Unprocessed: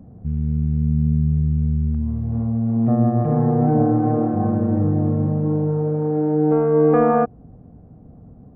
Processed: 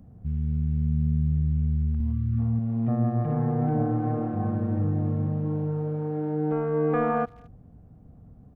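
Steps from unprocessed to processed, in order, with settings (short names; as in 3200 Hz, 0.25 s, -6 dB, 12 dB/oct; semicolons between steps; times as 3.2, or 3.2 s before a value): low shelf 180 Hz +12 dB; 1.96–2.59 doubler 43 ms -3 dB; speakerphone echo 0.22 s, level -27 dB; 2.13–2.39 spectral delete 400–1100 Hz; tilt shelf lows -8.5 dB, about 1200 Hz; gain -5.5 dB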